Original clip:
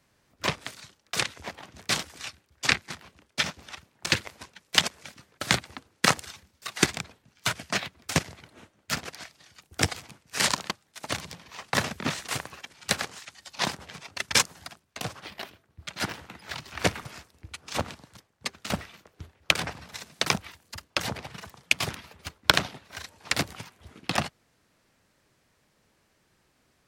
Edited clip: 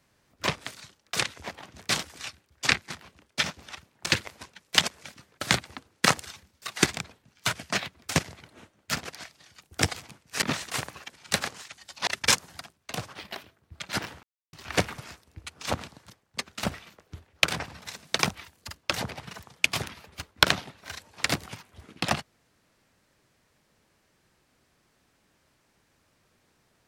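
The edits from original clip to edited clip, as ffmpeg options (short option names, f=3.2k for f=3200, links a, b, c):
-filter_complex "[0:a]asplit=5[a][b][c][d][e];[a]atrim=end=10.422[f];[b]atrim=start=11.988:end=13.642[g];[c]atrim=start=14.138:end=16.3,asetpts=PTS-STARTPTS,afade=t=out:st=2.158:d=0.004:c=hsin[h];[d]atrim=start=16.3:end=16.6,asetpts=PTS-STARTPTS,volume=0[i];[e]atrim=start=16.6,asetpts=PTS-STARTPTS,afade=t=in:d=0.004:c=hsin[j];[f][g]acrossfade=d=0.004:c1=hsin:c2=hsin[k];[h][i][j]concat=n=3:v=0:a=1[l];[k][l]acrossfade=d=0.004:c1=hsin:c2=hsin"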